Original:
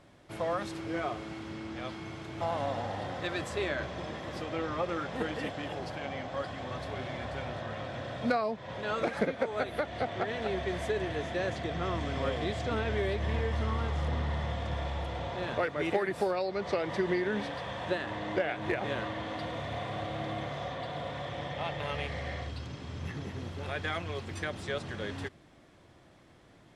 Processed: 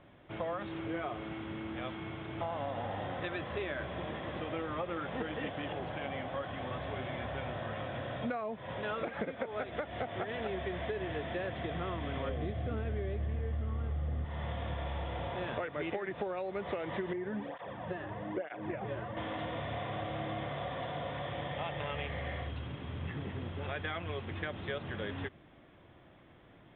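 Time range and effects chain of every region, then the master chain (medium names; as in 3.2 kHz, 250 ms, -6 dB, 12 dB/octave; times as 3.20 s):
12.29–14.25 s: tilt EQ -2.5 dB/octave + band-stop 950 Hz, Q 5.8
17.13–19.17 s: low-pass 1.1 kHz 6 dB/octave + cancelling through-zero flanger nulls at 1.1 Hz, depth 4.5 ms
whole clip: compression, threshold -33 dBFS; steep low-pass 3.6 kHz 96 dB/octave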